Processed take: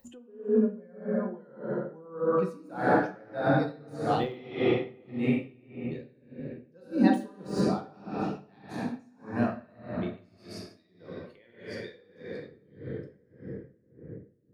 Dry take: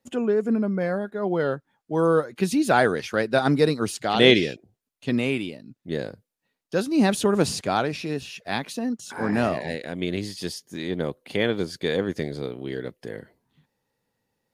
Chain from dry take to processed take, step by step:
spectral dynamics exaggerated over time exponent 1.5
rectangular room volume 190 cubic metres, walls hard, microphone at 0.86 metres
upward compression, threshold −25 dBFS
high-shelf EQ 3,000 Hz −9 dB
de-essing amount 75%
0:10.37–0:12.52: low-shelf EQ 420 Hz −9.5 dB
tremolo with a sine in dB 1.7 Hz, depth 28 dB
level −3.5 dB

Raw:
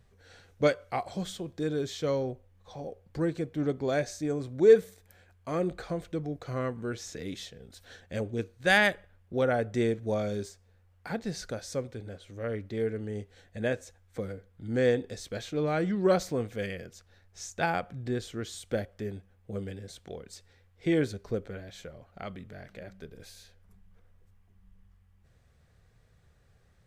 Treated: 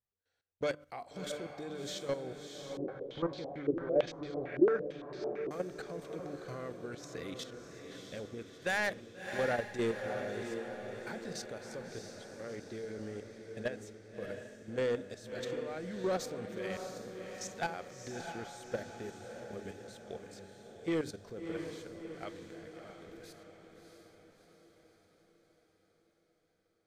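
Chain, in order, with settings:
noise gate −49 dBFS, range −26 dB
low-shelf EQ 160 Hz −9.5 dB
mains-hum notches 50/100/150/200/250/300 Hz
output level in coarse steps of 14 dB
soft clipping −26 dBFS, distortion −14 dB
feedback delay with all-pass diffusion 656 ms, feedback 55%, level −6 dB
0:02.77–0:05.51: low-pass on a step sequencer 8.9 Hz 350–4,500 Hz

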